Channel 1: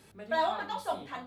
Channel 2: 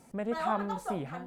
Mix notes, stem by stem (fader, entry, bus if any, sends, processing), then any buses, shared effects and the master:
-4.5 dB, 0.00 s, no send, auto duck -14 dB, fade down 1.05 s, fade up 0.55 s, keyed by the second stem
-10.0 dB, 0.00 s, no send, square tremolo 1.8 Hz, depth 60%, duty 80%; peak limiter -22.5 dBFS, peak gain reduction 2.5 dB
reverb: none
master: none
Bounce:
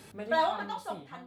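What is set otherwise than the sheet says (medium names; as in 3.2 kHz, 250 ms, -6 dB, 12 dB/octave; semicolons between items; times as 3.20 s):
stem 1 -4.5 dB -> +7.0 dB; master: extra high-pass 63 Hz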